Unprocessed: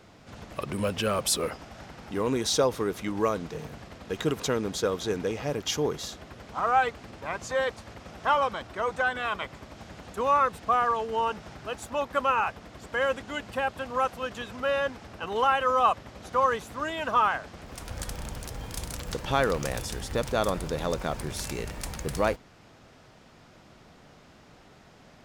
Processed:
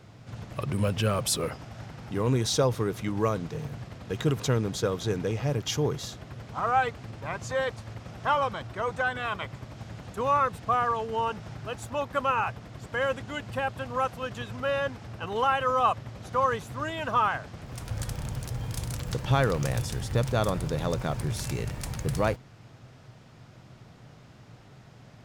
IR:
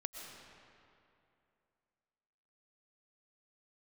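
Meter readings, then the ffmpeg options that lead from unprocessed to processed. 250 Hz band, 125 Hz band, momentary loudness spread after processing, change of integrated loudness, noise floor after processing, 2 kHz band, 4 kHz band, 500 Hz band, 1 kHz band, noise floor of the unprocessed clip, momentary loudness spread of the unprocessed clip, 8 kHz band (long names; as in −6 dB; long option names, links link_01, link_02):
+1.0 dB, +8.5 dB, 13 LU, −0.5 dB, −52 dBFS, −1.5 dB, −1.5 dB, −1.0 dB, −1.5 dB, −54 dBFS, 14 LU, −1.5 dB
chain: -af "equalizer=frequency=120:width=2:gain=14.5,volume=-1.5dB"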